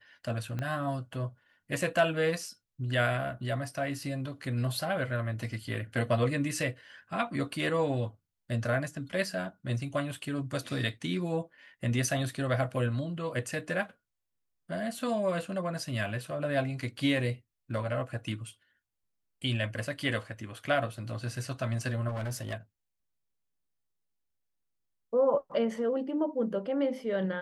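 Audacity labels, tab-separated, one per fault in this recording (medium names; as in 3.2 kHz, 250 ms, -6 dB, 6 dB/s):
0.590000	0.590000	pop -22 dBFS
22.080000	22.540000	clipped -31 dBFS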